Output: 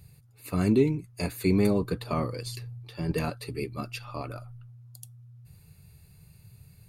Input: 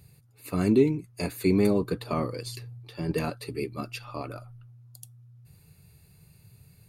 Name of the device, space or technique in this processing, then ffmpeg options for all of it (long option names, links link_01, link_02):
low shelf boost with a cut just above: -af "lowshelf=frequency=93:gain=6.5,equalizer=frequency=330:width_type=o:width=1.2:gain=-3"